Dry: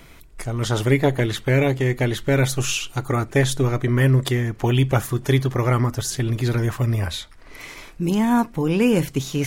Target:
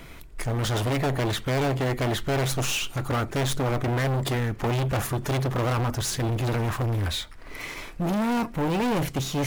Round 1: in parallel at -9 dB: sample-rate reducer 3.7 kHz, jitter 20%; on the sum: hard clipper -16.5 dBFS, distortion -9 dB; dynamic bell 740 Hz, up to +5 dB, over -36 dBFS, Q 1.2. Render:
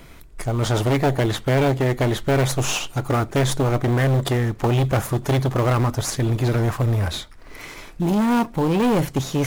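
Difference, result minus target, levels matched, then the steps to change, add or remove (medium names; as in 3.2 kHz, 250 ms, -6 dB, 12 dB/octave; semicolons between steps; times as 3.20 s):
sample-rate reducer: distortion +5 dB; hard clipper: distortion -5 dB
change: sample-rate reducer 12 kHz, jitter 20%; change: hard clipper -24 dBFS, distortion -4 dB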